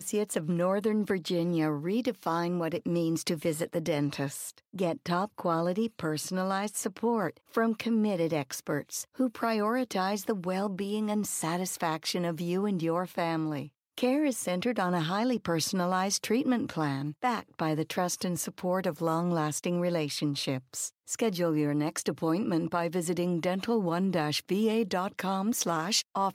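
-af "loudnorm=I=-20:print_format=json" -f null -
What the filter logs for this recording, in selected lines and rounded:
"input_i" : "-30.1",
"input_tp" : "-14.0",
"input_lra" : "2.3",
"input_thresh" : "-40.1",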